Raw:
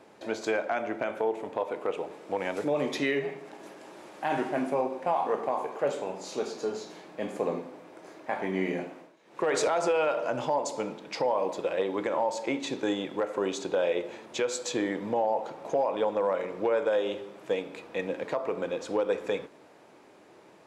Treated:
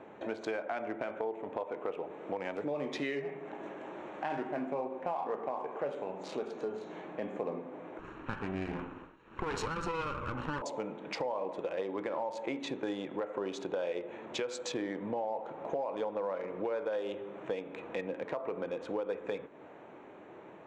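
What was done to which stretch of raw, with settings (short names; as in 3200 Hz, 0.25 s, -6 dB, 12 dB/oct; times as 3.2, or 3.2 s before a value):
7.99–10.62 minimum comb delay 0.73 ms
whole clip: Wiener smoothing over 9 samples; LPF 6100 Hz 12 dB/oct; compressor 2.5:1, threshold -42 dBFS; gain +4 dB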